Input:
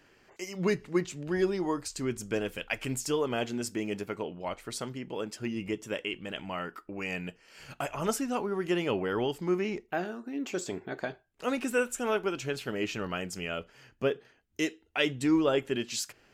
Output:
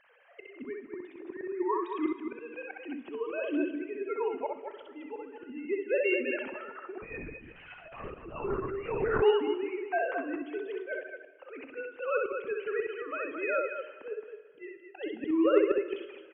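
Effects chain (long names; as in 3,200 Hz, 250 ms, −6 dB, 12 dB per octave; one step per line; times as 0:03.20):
three sine waves on the formant tracks
volume swells 568 ms
loudspeakers that aren't time-aligned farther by 22 metres −3 dB, 75 metres −7 dB
dense smooth reverb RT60 1.9 s, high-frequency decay 0.95×, DRR 12 dB
0:07.02–0:09.22: linear-prediction vocoder at 8 kHz whisper
saturating transformer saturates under 330 Hz
level +7 dB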